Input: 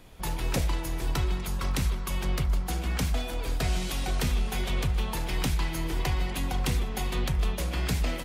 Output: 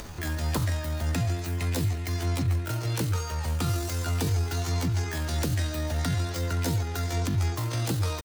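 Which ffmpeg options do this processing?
-af "acompressor=mode=upward:threshold=0.0355:ratio=2.5,asetrate=83250,aresample=44100,atempo=0.529732"

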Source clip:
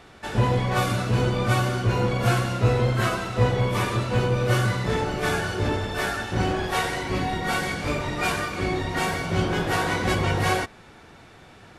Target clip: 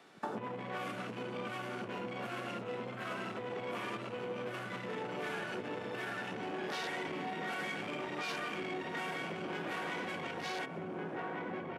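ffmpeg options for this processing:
-filter_complex "[0:a]afwtdn=0.0224,acrossover=split=470|2700[s0][s1][s2];[s2]dynaudnorm=f=110:g=13:m=2.82[s3];[s0][s1][s3]amix=inputs=3:normalize=0,asplit=2[s4][s5];[s5]adelay=1458,volume=0.501,highshelf=f=4000:g=-32.8[s6];[s4][s6]amix=inputs=2:normalize=0,alimiter=limit=0.119:level=0:latency=1:release=40,asoftclip=type=tanh:threshold=0.0708,acompressor=threshold=0.00794:ratio=16,highpass=f=180:w=0.5412,highpass=f=180:w=1.3066,volume=2.11"

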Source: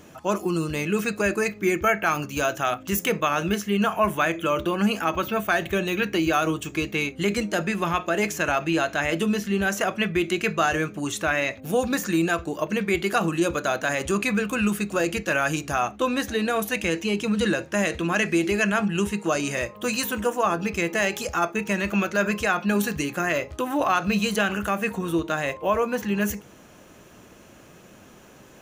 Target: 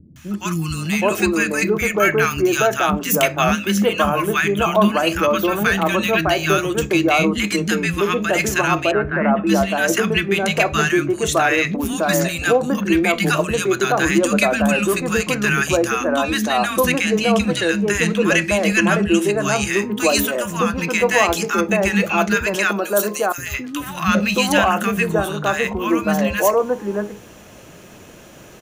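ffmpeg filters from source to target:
-filter_complex "[0:a]asettb=1/sr,asplit=3[s0][s1][s2];[s0]atrim=end=8.754[s3];[s1]atrim=start=8.75:end=9.31,asetpts=PTS-STARTPTS,afade=t=in:d=0.004:c=qsin,afade=t=out:st=0.556:d=0.004:c=qsin,lowpass=f=1700:w=0.5412,lowpass=f=1700:w=1.3066[s4];[s2]atrim=start=9.306[s5];[s3][s4]acrossfade=d=0.004:c1=hsin:c2=qsin[s6];[s6][s5]acrossfade=d=0.004:c1=qsin:c2=hsin,asettb=1/sr,asplit=3[s7][s8][s9];[s7]atrim=end=22.554[s10];[s8]atrim=start=22.55:end=23.38,asetpts=PTS-STARTPTS,afade=t=in:d=0.004:c=qsin,afade=t=out:st=0.826:d=0.004:c=qsin,aderivative[s11];[s9]atrim=start=23.376[s12];[s10][s11]acrossfade=d=0.004:c1=hsin:c2=qsin[s13];[s13][s12]acrossfade=d=0.004:c1=qsin:c2=hsin,acontrast=21,acrossover=split=250|1200[s14][s15][s16];[s16]adelay=160[s17];[s15]adelay=770[s18];[s14][s18][s17]amix=inputs=3:normalize=0,volume=1.5"

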